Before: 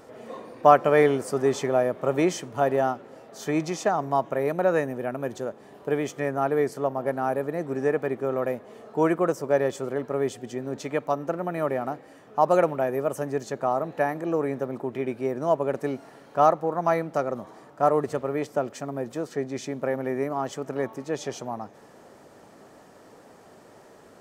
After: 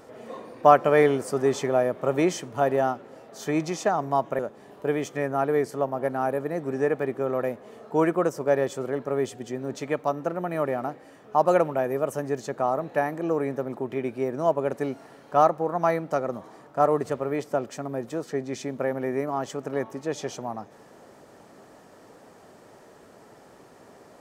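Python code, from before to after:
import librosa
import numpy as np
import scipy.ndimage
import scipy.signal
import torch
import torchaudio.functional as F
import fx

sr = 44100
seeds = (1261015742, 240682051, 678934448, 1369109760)

y = fx.edit(x, sr, fx.cut(start_s=4.39, length_s=1.03), tone=tone)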